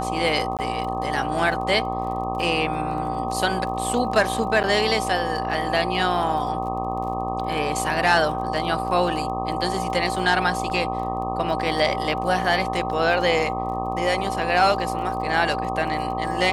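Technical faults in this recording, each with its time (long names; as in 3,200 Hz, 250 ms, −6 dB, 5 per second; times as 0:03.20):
mains buzz 60 Hz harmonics 21 −29 dBFS
surface crackle 29 per second −33 dBFS
whistle 770 Hz −27 dBFS
0:00.57–0:00.59: drop-out 18 ms
0:04.63–0:04.64: drop-out 8.7 ms
0:10.70: drop-out 3.2 ms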